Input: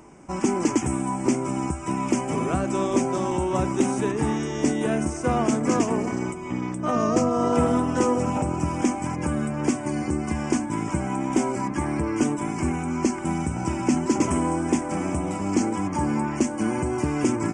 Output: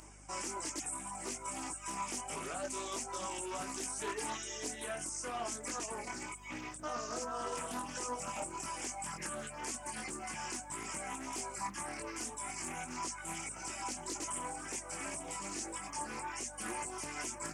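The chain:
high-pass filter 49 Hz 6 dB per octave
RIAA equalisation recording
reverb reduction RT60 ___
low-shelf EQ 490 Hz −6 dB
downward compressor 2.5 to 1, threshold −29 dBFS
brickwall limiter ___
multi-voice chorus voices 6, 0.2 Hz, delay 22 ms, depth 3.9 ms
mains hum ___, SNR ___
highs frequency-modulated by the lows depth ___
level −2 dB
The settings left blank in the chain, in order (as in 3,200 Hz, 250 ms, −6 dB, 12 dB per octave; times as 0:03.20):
1.4 s, −25 dBFS, 50 Hz, 17 dB, 0.41 ms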